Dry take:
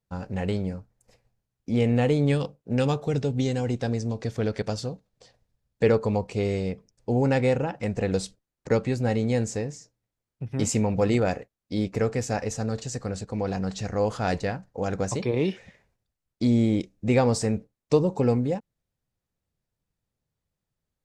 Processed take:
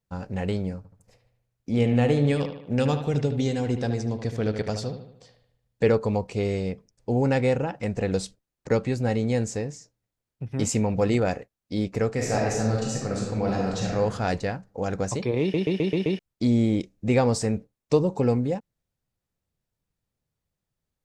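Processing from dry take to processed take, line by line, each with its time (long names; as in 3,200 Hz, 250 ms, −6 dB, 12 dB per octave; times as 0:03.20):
0:00.77–0:05.85: bucket-brigade delay 75 ms, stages 2,048, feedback 49%, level −9 dB
0:12.13–0:13.95: thrown reverb, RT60 1.1 s, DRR −2.5 dB
0:15.41: stutter in place 0.13 s, 6 plays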